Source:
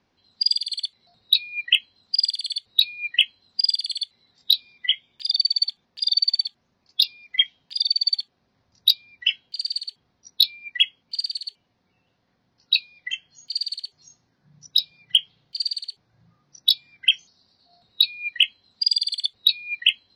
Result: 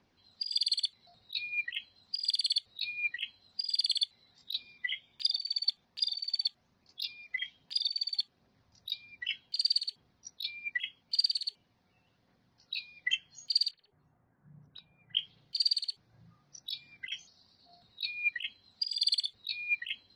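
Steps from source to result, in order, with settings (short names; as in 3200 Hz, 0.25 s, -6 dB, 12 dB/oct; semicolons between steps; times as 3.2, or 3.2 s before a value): 13.71–15.17 LPF 1700 Hz 24 dB/oct; negative-ratio compressor -23 dBFS, ratio -0.5; phaser 1.3 Hz, delay 1.7 ms, feedback 26%; gain -6.5 dB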